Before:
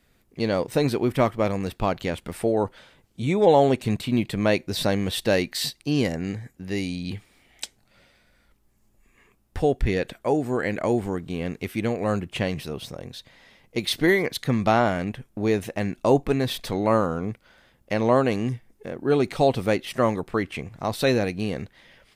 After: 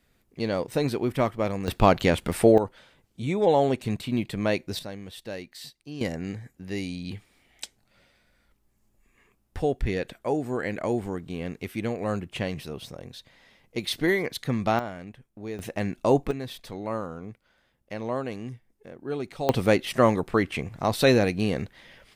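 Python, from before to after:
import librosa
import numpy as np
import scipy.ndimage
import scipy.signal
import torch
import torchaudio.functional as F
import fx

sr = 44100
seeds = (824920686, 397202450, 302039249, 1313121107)

y = fx.gain(x, sr, db=fx.steps((0.0, -3.5), (1.68, 6.0), (2.58, -4.0), (4.79, -15.0), (6.01, -4.0), (14.79, -13.0), (15.59, -2.0), (16.31, -10.5), (19.49, 2.0)))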